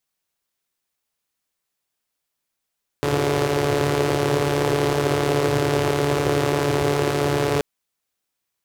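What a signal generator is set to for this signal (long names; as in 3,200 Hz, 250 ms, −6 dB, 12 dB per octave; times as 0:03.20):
pulse-train model of a four-cylinder engine, steady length 4.58 s, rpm 4,300, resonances 120/370 Hz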